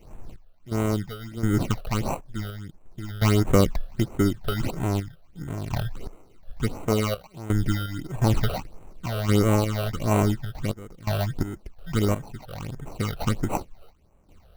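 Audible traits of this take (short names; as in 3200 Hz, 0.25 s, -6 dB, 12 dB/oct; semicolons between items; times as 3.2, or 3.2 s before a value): random-step tremolo 2.8 Hz, depth 90%; aliases and images of a low sample rate 1700 Hz, jitter 0%; phasing stages 8, 1.5 Hz, lowest notch 270–4800 Hz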